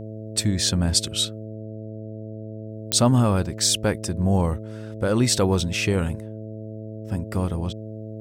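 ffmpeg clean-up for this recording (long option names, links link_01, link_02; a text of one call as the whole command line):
ffmpeg -i in.wav -af "adeclick=threshold=4,bandreject=frequency=108.8:width_type=h:width=4,bandreject=frequency=217.6:width_type=h:width=4,bandreject=frequency=326.4:width_type=h:width=4,bandreject=frequency=435.2:width_type=h:width=4,bandreject=frequency=544:width_type=h:width=4,bandreject=frequency=652.8:width_type=h:width=4" out.wav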